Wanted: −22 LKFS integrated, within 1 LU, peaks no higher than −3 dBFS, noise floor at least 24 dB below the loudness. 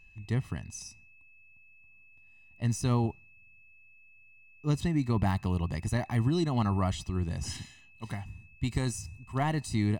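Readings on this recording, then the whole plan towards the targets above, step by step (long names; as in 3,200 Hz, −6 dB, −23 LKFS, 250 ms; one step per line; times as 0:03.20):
interfering tone 2,600 Hz; level of the tone −57 dBFS; integrated loudness −31.5 LKFS; sample peak −14.5 dBFS; target loudness −22.0 LKFS
→ notch filter 2,600 Hz, Q 30
level +9.5 dB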